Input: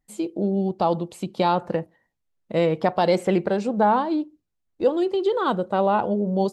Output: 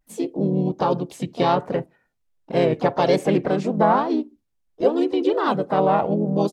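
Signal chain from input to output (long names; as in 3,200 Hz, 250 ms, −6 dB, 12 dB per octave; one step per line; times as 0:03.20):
pitch-shifted copies added −4 semitones −4 dB, +4 semitones −16 dB, +5 semitones −13 dB
pitch vibrato 1.3 Hz 77 cents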